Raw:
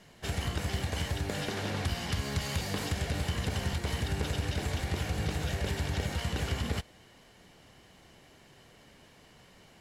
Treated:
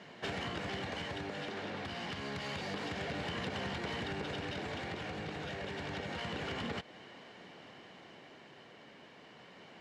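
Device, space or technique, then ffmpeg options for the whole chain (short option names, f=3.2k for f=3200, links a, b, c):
AM radio: -af "highpass=200,lowpass=3.5k,acompressor=threshold=-40dB:ratio=6,asoftclip=type=tanh:threshold=-36dB,tremolo=f=0.28:d=0.3,volume=6.5dB"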